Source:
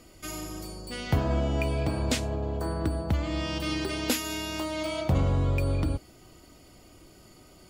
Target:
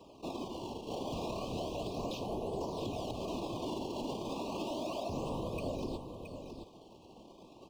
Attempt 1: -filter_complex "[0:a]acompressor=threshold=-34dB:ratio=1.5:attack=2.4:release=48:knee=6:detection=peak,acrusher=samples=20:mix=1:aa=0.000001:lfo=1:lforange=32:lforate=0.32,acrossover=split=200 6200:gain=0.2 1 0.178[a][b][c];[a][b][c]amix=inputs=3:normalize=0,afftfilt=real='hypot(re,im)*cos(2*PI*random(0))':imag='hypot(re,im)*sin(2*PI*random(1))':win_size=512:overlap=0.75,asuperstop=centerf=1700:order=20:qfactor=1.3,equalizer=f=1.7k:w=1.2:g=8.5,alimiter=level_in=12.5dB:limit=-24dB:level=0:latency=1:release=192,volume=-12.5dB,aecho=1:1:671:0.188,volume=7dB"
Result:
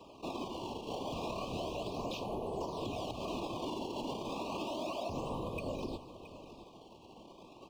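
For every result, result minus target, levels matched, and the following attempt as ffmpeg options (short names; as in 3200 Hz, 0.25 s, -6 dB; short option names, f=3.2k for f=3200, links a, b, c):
compressor: peak gain reduction +6 dB; echo-to-direct -6.5 dB; 2000 Hz band +3.5 dB
-filter_complex "[0:a]acrusher=samples=20:mix=1:aa=0.000001:lfo=1:lforange=32:lforate=0.32,acrossover=split=200 6200:gain=0.2 1 0.178[a][b][c];[a][b][c]amix=inputs=3:normalize=0,afftfilt=real='hypot(re,im)*cos(2*PI*random(0))':imag='hypot(re,im)*sin(2*PI*random(1))':win_size=512:overlap=0.75,asuperstop=centerf=1700:order=20:qfactor=1.3,equalizer=f=1.7k:w=1.2:g=8.5,alimiter=level_in=12.5dB:limit=-24dB:level=0:latency=1:release=192,volume=-12.5dB,aecho=1:1:671:0.188,volume=7dB"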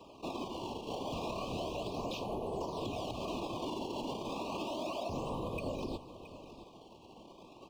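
echo-to-direct -6.5 dB; 2000 Hz band +3.5 dB
-filter_complex "[0:a]acrusher=samples=20:mix=1:aa=0.000001:lfo=1:lforange=32:lforate=0.32,acrossover=split=200 6200:gain=0.2 1 0.178[a][b][c];[a][b][c]amix=inputs=3:normalize=0,afftfilt=real='hypot(re,im)*cos(2*PI*random(0))':imag='hypot(re,im)*sin(2*PI*random(1))':win_size=512:overlap=0.75,asuperstop=centerf=1700:order=20:qfactor=1.3,equalizer=f=1.7k:w=1.2:g=8.5,alimiter=level_in=12.5dB:limit=-24dB:level=0:latency=1:release=192,volume=-12.5dB,aecho=1:1:671:0.398,volume=7dB"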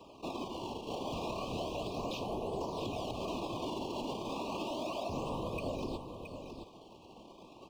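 2000 Hz band +3.5 dB
-filter_complex "[0:a]acrusher=samples=20:mix=1:aa=0.000001:lfo=1:lforange=32:lforate=0.32,acrossover=split=200 6200:gain=0.2 1 0.178[a][b][c];[a][b][c]amix=inputs=3:normalize=0,afftfilt=real='hypot(re,im)*cos(2*PI*random(0))':imag='hypot(re,im)*sin(2*PI*random(1))':win_size=512:overlap=0.75,asuperstop=centerf=1700:order=20:qfactor=1.3,equalizer=f=1.7k:w=1.2:g=-2.5,alimiter=level_in=12.5dB:limit=-24dB:level=0:latency=1:release=192,volume=-12.5dB,aecho=1:1:671:0.398,volume=7dB"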